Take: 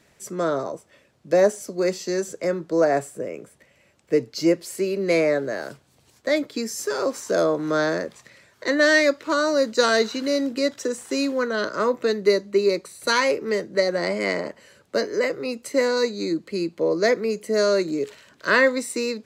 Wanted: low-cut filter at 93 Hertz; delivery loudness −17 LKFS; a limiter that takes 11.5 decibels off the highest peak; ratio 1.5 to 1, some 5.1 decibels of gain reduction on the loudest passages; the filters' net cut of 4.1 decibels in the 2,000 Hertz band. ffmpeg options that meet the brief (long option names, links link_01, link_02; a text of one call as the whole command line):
ffmpeg -i in.wav -af "highpass=93,equalizer=frequency=2000:width_type=o:gain=-5,acompressor=threshold=-28dB:ratio=1.5,volume=15dB,alimiter=limit=-8dB:level=0:latency=1" out.wav